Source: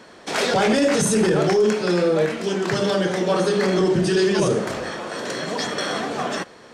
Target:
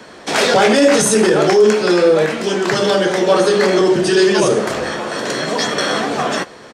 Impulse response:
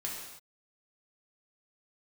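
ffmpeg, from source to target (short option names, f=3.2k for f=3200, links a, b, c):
-filter_complex "[0:a]acrossover=split=250|460|3800[a][b][c][d];[a]acompressor=threshold=-36dB:ratio=4[e];[e][b][c][d]amix=inputs=4:normalize=0,asplit=2[f][g];[g]adelay=14,volume=-11dB[h];[f][h]amix=inputs=2:normalize=0,volume=7dB"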